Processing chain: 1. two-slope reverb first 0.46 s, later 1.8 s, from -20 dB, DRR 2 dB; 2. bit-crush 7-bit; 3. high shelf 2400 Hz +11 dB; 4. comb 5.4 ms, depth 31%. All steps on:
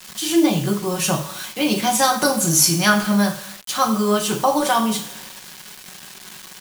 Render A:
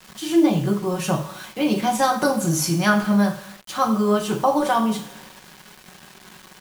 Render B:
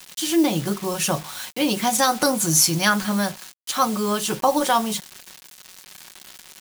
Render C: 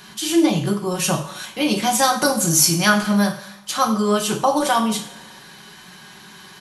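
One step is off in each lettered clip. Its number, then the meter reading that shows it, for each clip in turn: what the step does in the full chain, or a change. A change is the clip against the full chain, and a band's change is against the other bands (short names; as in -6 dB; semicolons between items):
3, 8 kHz band -9.0 dB; 1, momentary loudness spread change -11 LU; 2, distortion -25 dB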